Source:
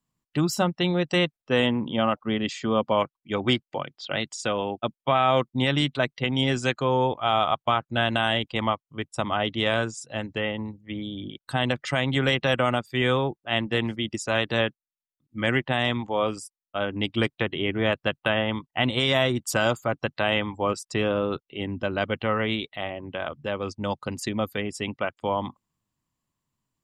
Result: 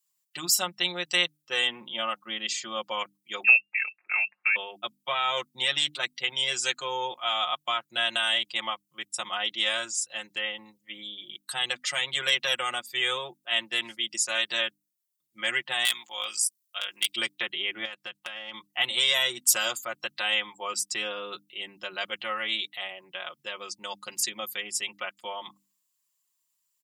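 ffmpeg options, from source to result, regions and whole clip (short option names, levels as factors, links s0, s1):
-filter_complex "[0:a]asettb=1/sr,asplit=3[s0][s1][s2];[s0]atrim=end=3.444[s3];[s1]atrim=start=3.44:end=4.56,asetpts=PTS-STARTPTS,afade=t=in:d=0.004:c=qsin,afade=t=out:st=1.116:d=0.004:c=qsin,lowshelf=f=370:g=7,lowpass=f=2400:t=q:w=0.5098,lowpass=f=2400:t=q:w=0.6013,lowpass=f=2400:t=q:w=0.9,lowpass=f=2400:t=q:w=2.563,afreqshift=-2800[s4];[s2]atrim=start=4.556[s5];[s3][s4]acrossfade=d=0.004:c1=hsin:c2=qsin[s6];[s6][s5]acrossfade=d=0.004:c1=qsin:c2=hsin,asettb=1/sr,asplit=3[s7][s8][s9];[s7]atrim=end=15.854[s10];[s8]atrim=start=15.85:end=17.16,asetpts=PTS-STARTPTS,afade=t=in:d=0.004:c=qsin,afade=t=out:st=1.306:d=0.004:c=qsin,tiltshelf=f=1200:g=-9,tremolo=f=57:d=0.667,asoftclip=type=hard:threshold=0.15[s11];[s9]atrim=start=17.156[s12];[s10][s11]acrossfade=d=0.004:c1=hsin:c2=qsin[s13];[s13][s12]acrossfade=d=0.004:c1=qsin:c2=hsin,asettb=1/sr,asplit=3[s14][s15][s16];[s14]atrim=end=17.854[s17];[s15]atrim=start=17.85:end=18.54,asetpts=PTS-STARTPTS,afade=t=in:d=0.004:c=qsin,afade=t=out:st=0.686:d=0.004:c=qsin,highshelf=f=10000:g=-6.5,acompressor=threshold=0.0398:ratio=12:attack=3.2:release=140:knee=1:detection=peak,asoftclip=type=hard:threshold=0.133[s18];[s16]atrim=start=18.536[s19];[s17][s18]acrossfade=d=0.004:c1=hsin:c2=qsin[s20];[s20][s19]acrossfade=d=0.004:c1=qsin:c2=hsin,aderivative,bandreject=f=50:t=h:w=6,bandreject=f=100:t=h:w=6,bandreject=f=150:t=h:w=6,bandreject=f=200:t=h:w=6,bandreject=f=250:t=h:w=6,bandreject=f=300:t=h:w=6,aecho=1:1:5.6:0.86,volume=2.37"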